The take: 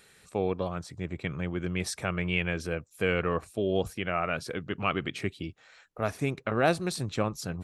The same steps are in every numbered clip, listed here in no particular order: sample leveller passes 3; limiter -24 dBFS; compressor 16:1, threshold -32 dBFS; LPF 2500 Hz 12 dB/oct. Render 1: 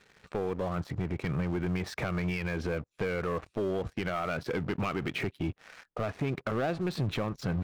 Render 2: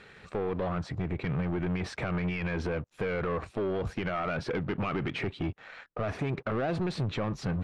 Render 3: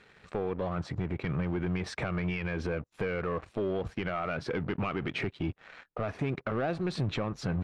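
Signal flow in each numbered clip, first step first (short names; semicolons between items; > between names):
compressor > LPF > sample leveller > limiter; limiter > compressor > sample leveller > LPF; compressor > sample leveller > LPF > limiter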